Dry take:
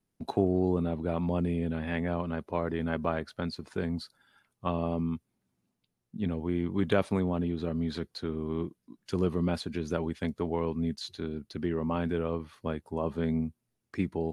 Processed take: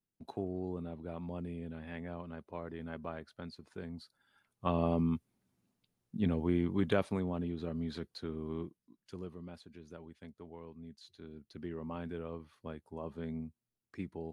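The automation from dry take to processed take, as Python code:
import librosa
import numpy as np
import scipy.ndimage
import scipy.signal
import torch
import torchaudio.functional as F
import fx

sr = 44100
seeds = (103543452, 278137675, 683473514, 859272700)

y = fx.gain(x, sr, db=fx.line((3.98, -12.0), (4.8, 0.0), (6.5, 0.0), (7.16, -6.5), (8.54, -6.5), (9.43, -19.0), (10.87, -19.0), (11.58, -11.0)))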